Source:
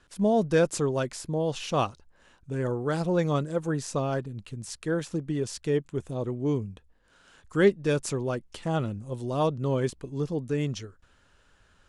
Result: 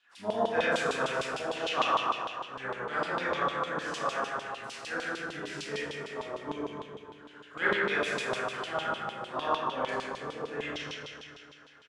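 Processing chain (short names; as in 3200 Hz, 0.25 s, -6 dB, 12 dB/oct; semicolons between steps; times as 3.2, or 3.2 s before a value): harmoniser -12 st -8 dB, +3 st -17 dB, +7 st -18 dB; Schroeder reverb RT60 2.4 s, combs from 27 ms, DRR -10 dB; LFO band-pass saw down 6.6 Hz 970–3500 Hz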